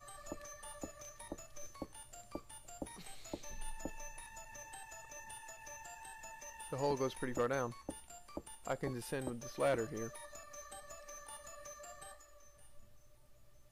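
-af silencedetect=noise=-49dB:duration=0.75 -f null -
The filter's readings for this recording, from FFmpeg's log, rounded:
silence_start: 12.84
silence_end: 13.72 | silence_duration: 0.88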